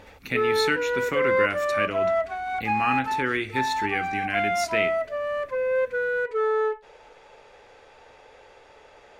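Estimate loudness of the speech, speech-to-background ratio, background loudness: -28.5 LUFS, -2.5 dB, -26.0 LUFS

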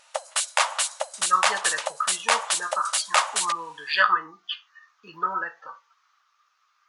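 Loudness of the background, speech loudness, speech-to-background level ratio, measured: -24.5 LUFS, -27.0 LUFS, -2.5 dB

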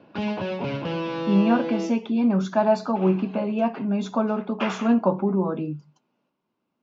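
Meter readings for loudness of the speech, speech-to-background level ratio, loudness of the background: -23.5 LUFS, 5.5 dB, -29.0 LUFS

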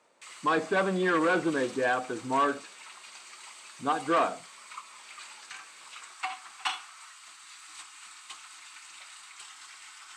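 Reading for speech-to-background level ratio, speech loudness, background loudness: 15.0 dB, -28.0 LUFS, -43.0 LUFS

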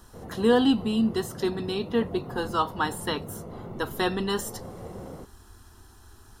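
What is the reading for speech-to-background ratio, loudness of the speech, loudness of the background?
13.5 dB, -27.0 LUFS, -40.5 LUFS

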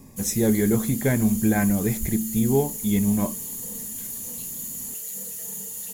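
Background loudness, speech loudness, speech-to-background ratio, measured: -30.5 LUFS, -23.0 LUFS, 7.5 dB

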